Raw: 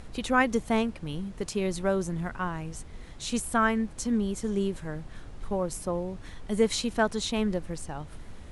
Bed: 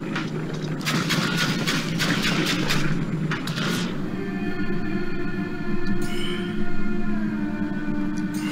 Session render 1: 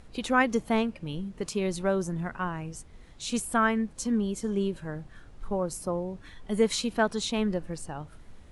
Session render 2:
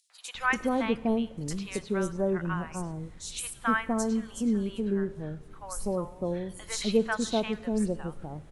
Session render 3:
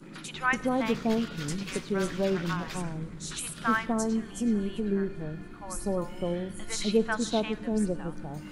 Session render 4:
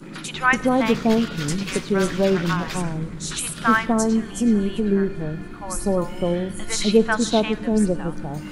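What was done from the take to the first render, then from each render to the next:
noise print and reduce 7 dB
three bands offset in time highs, mids, lows 100/350 ms, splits 850/4300 Hz; plate-style reverb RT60 1.5 s, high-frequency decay 0.9×, DRR 17 dB
add bed -17.5 dB
trim +8.5 dB

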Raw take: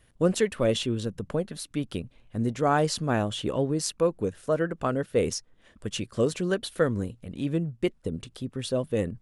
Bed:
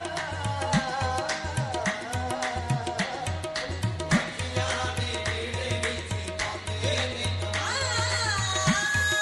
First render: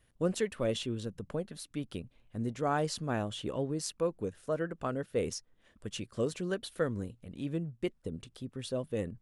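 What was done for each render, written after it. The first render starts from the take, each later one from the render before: trim -7.5 dB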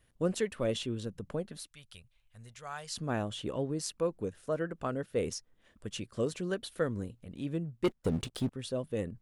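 1.67–2.96 s: amplifier tone stack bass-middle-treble 10-0-10; 7.84–8.52 s: waveshaping leveller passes 3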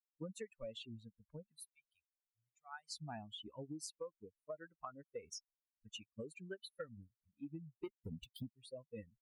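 expander on every frequency bin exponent 3; compression 12:1, threshold -43 dBFS, peak gain reduction 17 dB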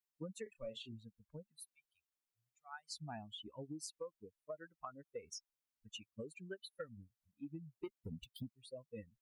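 0.43–0.93 s: doubling 32 ms -9 dB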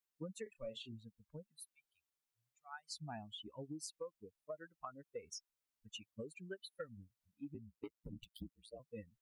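7.54–8.80 s: ring modulator 56 Hz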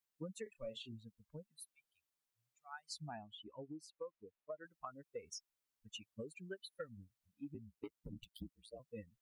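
3.09–4.65 s: tone controls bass -6 dB, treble -14 dB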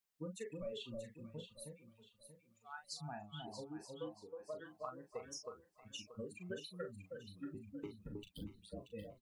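doubling 39 ms -7 dB; on a send: echo whose repeats swap between lows and highs 316 ms, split 890 Hz, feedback 55%, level -3 dB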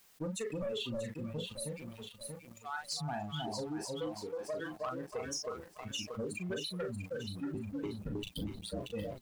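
waveshaping leveller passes 2; level flattener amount 50%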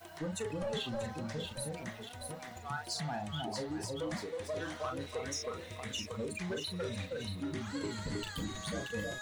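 add bed -18.5 dB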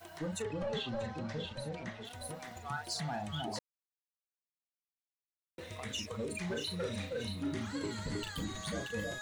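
0.42–2.05 s: low-pass 5.1 kHz; 3.59–5.58 s: mute; 6.26–7.67 s: doubling 35 ms -6.5 dB

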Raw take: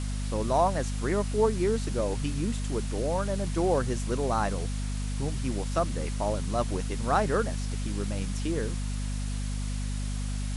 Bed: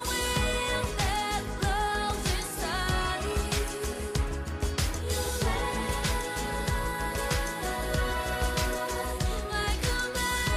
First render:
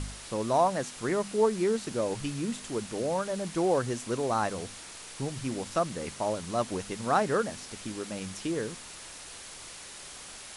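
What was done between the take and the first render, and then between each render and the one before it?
de-hum 50 Hz, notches 5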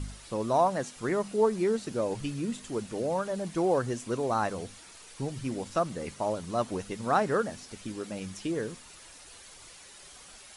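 noise reduction 8 dB, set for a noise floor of -45 dBFS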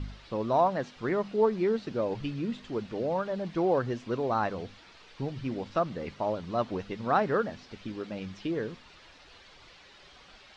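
low-pass 4.4 kHz 24 dB/octave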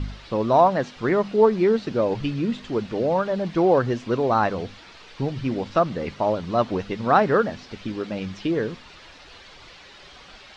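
trim +8 dB

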